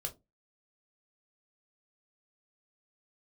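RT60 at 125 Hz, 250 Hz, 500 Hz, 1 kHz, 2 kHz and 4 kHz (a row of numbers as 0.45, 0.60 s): 0.35, 0.30, 0.25, 0.20, 0.15, 0.15 s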